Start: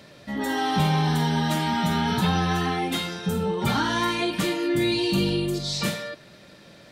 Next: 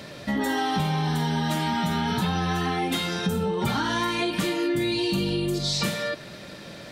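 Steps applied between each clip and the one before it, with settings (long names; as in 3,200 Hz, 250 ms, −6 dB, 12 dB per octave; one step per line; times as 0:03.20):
downward compressor 6 to 1, threshold −31 dBFS, peak gain reduction 12.5 dB
level +8 dB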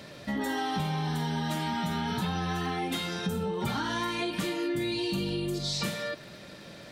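surface crackle 19 per second −38 dBFS
level −5.5 dB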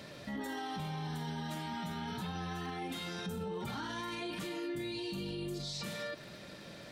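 brickwall limiter −29 dBFS, peak gain reduction 9.5 dB
level −3 dB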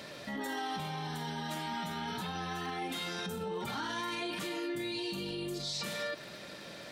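low-shelf EQ 210 Hz −10 dB
level +4.5 dB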